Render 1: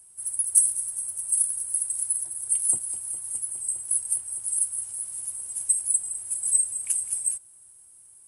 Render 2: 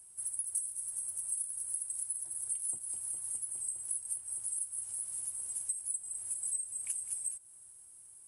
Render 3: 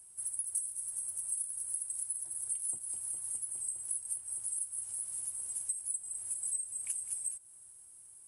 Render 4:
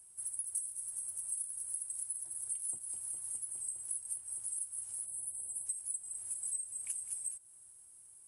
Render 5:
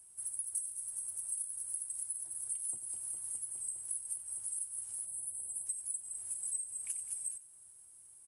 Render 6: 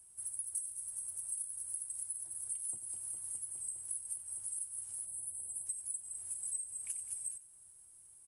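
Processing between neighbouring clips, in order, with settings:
downward compressor 4 to 1, threshold −32 dBFS, peak gain reduction 16 dB; level −3 dB
no processing that can be heard
time-frequency box erased 0:05.06–0:05.66, 1,000–7,600 Hz; level −2.5 dB
single-tap delay 92 ms −13 dB
low-shelf EQ 120 Hz +6 dB; level −1.5 dB

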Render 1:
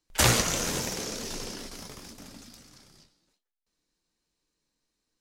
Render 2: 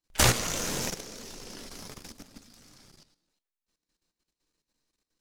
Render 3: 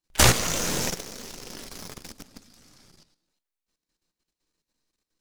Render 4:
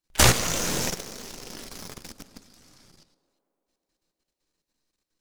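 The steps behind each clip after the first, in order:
gain on one half-wave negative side −7 dB; output level in coarse steps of 12 dB; level +4.5 dB
convolution reverb, pre-delay 5 ms, DRR 19.5 dB; in parallel at −4 dB: bit-depth reduction 6 bits, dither none
tape delay 113 ms, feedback 90%, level −24 dB, low-pass 2,500 Hz

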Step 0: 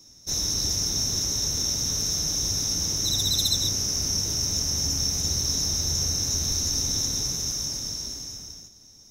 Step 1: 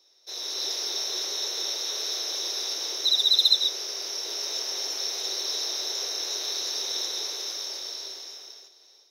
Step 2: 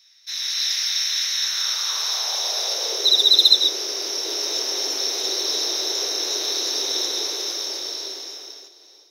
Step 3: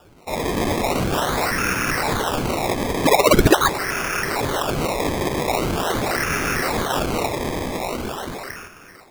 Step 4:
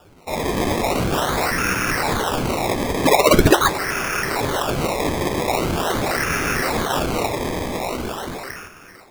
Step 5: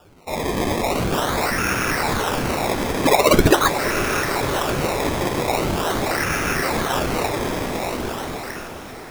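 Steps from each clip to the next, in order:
Chebyshev high-pass filter 370 Hz, order 5; high shelf with overshoot 5,300 Hz −9 dB, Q 3; automatic gain control gain up to 7.5 dB; level −5 dB
high-pass filter sweep 1,900 Hz → 280 Hz, 0:01.32–0:03.53; level +6 dB
in parallel at −1 dB: downward compressor, threshold −31 dBFS, peak gain reduction 20.5 dB; on the sum: sample-and-hold swept by an LFO 21×, swing 100% 0.43 Hz
flanger 0.55 Hz, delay 9.6 ms, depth 8.4 ms, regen −66%; level +5 dB
feedback delay with all-pass diffusion 598 ms, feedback 56%, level −10 dB; level −1 dB

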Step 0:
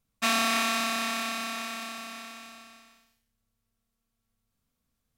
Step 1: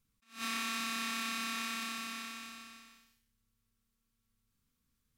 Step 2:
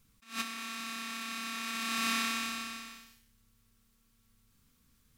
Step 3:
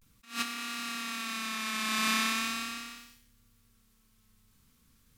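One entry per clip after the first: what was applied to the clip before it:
parametric band 660 Hz −14.5 dB 0.57 octaves; downward compressor 10 to 1, threshold −31 dBFS, peak gain reduction 10.5 dB; level that may rise only so fast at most 190 dB per second
compressor whose output falls as the input rises −42 dBFS, ratio −0.5; level +7 dB
pitch vibrato 0.4 Hz 65 cents; level +3 dB

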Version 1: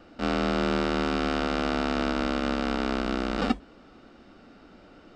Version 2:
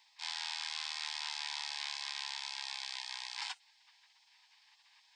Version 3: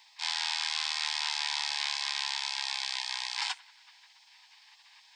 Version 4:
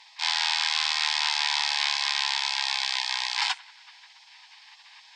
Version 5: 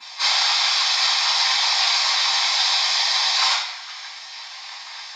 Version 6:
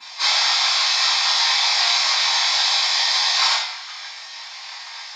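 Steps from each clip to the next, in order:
Butterworth high-pass 960 Hz 72 dB per octave; gate on every frequency bin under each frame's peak −15 dB weak; level +2.5 dB
feedback echo with a band-pass in the loop 92 ms, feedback 70%, band-pass 1,700 Hz, level −22 dB; level +8 dB
high-frequency loss of the air 52 metres; level +8 dB
downward compressor, threshold −30 dBFS, peak gain reduction 10 dB; random phases in short frames; convolution reverb RT60 0.70 s, pre-delay 3 ms, DRR −14 dB
flutter between parallel walls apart 3.9 metres, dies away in 0.21 s

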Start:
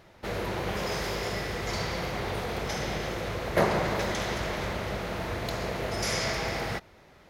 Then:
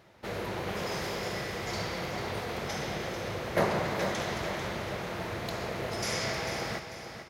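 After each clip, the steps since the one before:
high-pass filter 74 Hz
repeating echo 444 ms, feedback 38%, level −9 dB
level −3 dB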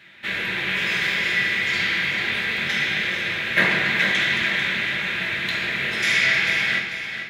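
flat-topped bell 2,400 Hz +15 dB
convolution reverb RT60 0.65 s, pre-delay 3 ms, DRR −0.5 dB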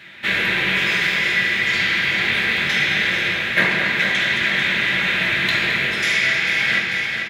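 speech leveller within 4 dB 0.5 s
slap from a distant wall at 37 metres, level −8 dB
level +3 dB

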